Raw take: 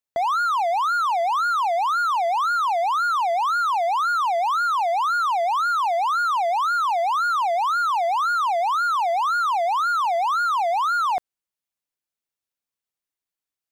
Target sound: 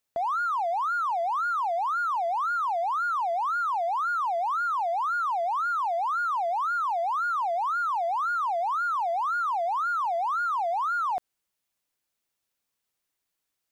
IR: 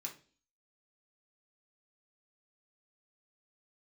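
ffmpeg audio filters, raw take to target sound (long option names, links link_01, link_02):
-af "alimiter=level_in=3.5dB:limit=-24dB:level=0:latency=1,volume=-3.5dB,asoftclip=type=tanh:threshold=-28.5dB,volume=7dB"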